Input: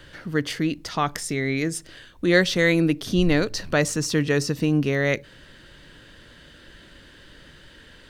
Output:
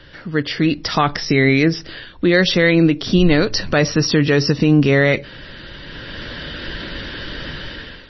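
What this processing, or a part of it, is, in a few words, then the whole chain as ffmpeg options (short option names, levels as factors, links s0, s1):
low-bitrate web radio: -af "dynaudnorm=f=450:g=3:m=6.31,alimiter=limit=0.447:level=0:latency=1:release=53,volume=1.5" -ar 22050 -c:a libmp3lame -b:a 24k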